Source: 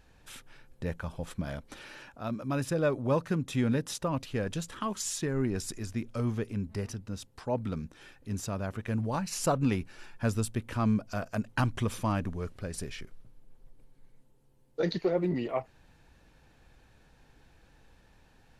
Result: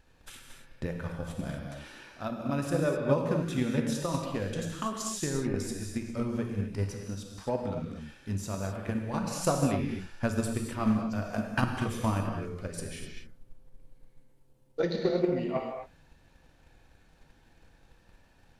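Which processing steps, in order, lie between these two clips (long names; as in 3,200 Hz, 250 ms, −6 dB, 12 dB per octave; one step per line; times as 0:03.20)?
reverb whose tail is shaped and stops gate 280 ms flat, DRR 0 dB
transient designer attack +7 dB, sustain +2 dB
level −4.5 dB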